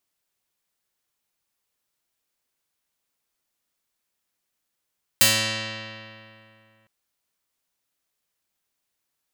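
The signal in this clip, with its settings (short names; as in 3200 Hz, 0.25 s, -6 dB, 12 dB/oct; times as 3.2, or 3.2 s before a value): plucked string A2, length 1.66 s, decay 2.65 s, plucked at 0.26, medium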